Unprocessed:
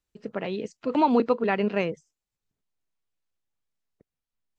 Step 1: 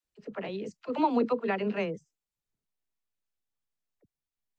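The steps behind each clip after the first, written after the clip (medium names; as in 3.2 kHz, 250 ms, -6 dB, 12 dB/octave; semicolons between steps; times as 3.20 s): phase dispersion lows, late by 46 ms, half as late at 410 Hz; trim -5 dB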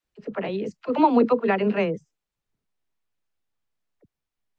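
treble shelf 5.3 kHz -11.5 dB; trim +8 dB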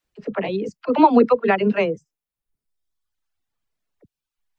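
reverb removal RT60 1.2 s; trim +5 dB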